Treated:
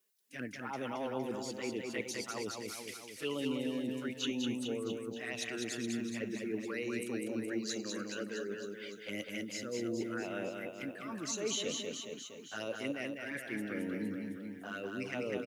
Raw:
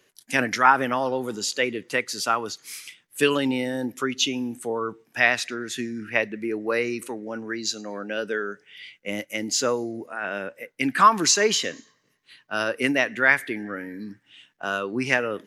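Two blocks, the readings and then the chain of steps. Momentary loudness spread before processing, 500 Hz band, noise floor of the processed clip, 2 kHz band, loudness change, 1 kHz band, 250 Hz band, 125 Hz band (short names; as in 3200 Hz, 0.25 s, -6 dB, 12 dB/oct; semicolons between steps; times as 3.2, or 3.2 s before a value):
15 LU, -11.5 dB, -50 dBFS, -18.0 dB, -14.5 dB, -22.5 dB, -8.0 dB, -8.5 dB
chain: gate -42 dBFS, range -17 dB; reverse; compressor 12:1, threshold -32 dBFS, peak gain reduction 22 dB; reverse; rotary speaker horn 0.85 Hz; added noise blue -76 dBFS; envelope flanger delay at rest 4.8 ms, full sweep at -33.5 dBFS; on a send: reverse bouncing-ball echo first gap 0.2 s, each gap 1.1×, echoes 5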